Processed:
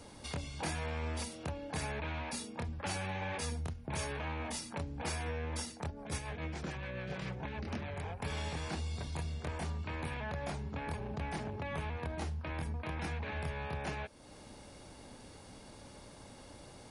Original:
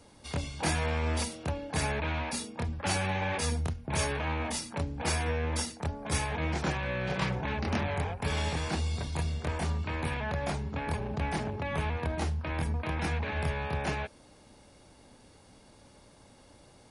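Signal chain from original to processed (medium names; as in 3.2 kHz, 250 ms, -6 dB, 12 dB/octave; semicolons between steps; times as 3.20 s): compression 2:1, threshold -49 dBFS, peak gain reduction 13 dB; 5.90–8.04 s: rotary cabinet horn 7 Hz; trim +4 dB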